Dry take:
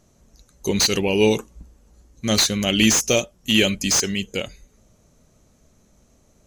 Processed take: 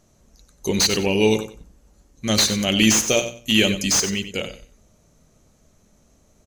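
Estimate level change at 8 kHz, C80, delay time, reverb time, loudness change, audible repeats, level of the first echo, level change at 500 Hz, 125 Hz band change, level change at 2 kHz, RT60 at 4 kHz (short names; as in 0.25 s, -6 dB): +0.5 dB, none, 92 ms, none, 0.0 dB, 2, -11.0 dB, -0.5 dB, 0.0 dB, +0.5 dB, none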